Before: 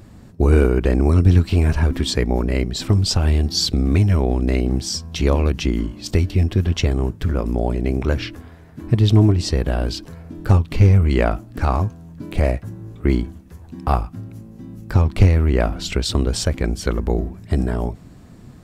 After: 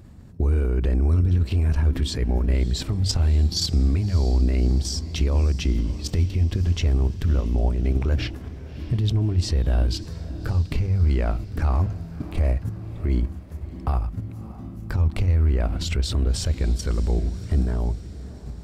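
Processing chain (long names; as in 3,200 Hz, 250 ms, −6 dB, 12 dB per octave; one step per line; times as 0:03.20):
output level in coarse steps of 10 dB
parametric band 62 Hz +9.5 dB 2.4 octaves
brickwall limiter −14 dBFS, peak gain reduction 16 dB
mains-hum notches 50/100 Hz
feedback delay with all-pass diffusion 615 ms, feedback 55%, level −16 dB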